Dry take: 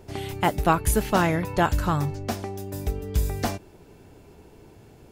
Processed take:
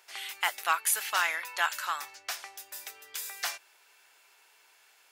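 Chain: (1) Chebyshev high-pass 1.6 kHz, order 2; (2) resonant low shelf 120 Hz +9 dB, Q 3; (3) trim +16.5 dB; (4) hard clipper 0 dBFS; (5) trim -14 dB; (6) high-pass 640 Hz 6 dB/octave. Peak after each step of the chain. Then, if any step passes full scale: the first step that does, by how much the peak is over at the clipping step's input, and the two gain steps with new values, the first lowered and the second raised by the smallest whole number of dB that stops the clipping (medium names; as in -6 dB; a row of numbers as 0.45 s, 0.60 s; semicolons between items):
-13.5 dBFS, -13.5 dBFS, +3.0 dBFS, 0.0 dBFS, -14.0 dBFS, -12.5 dBFS; step 3, 3.0 dB; step 3 +13.5 dB, step 5 -11 dB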